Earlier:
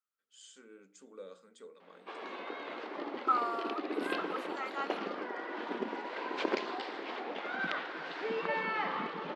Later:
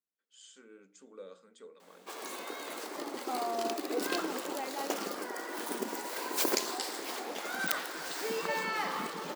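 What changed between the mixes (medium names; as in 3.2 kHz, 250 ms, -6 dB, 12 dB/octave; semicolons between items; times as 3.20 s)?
second voice: remove resonant high-pass 1.3 kHz, resonance Q 12; background: remove low-pass 3.3 kHz 24 dB/octave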